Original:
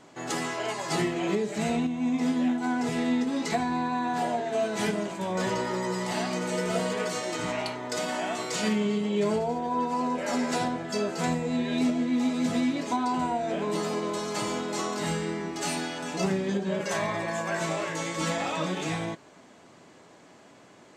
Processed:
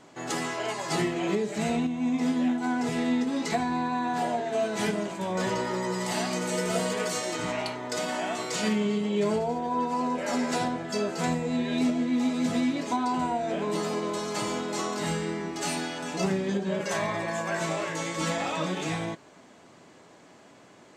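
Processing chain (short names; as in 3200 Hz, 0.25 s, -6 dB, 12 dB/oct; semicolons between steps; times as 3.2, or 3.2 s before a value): 6–7.33 high shelf 6200 Hz +7.5 dB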